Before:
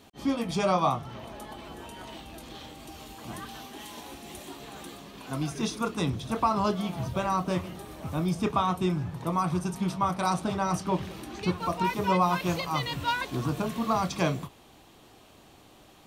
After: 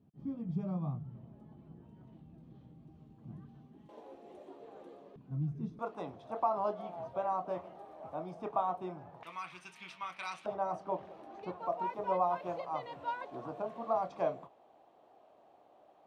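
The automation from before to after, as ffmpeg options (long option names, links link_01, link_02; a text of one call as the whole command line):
ffmpeg -i in.wav -af "asetnsamples=nb_out_samples=441:pad=0,asendcmd='3.89 bandpass f 500;5.16 bandpass f 140;5.79 bandpass f 690;9.23 bandpass f 2400;10.46 bandpass f 660',bandpass=frequency=150:width_type=q:width=2.9:csg=0" out.wav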